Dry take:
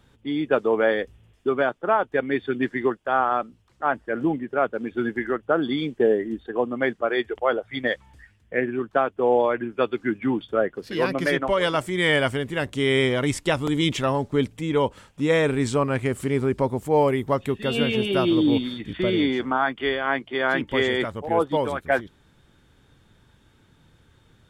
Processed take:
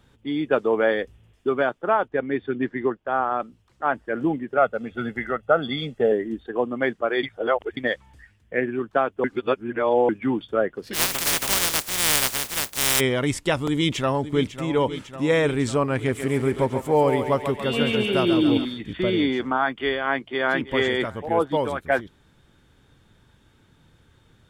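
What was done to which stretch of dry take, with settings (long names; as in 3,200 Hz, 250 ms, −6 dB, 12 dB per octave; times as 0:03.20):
0:02.08–0:03.40: head-to-tape spacing loss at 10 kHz 21 dB
0:04.57–0:06.12: comb filter 1.5 ms
0:07.23–0:07.77: reverse
0:09.24–0:10.09: reverse
0:10.93–0:12.99: compressing power law on the bin magnitudes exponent 0.11
0:13.68–0:14.61: delay throw 550 ms, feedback 70%, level −12 dB
0:15.94–0:18.65: feedback echo with a high-pass in the loop 139 ms, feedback 62%, level −6 dB
0:20.13–0:20.74: delay throw 320 ms, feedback 40%, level −17 dB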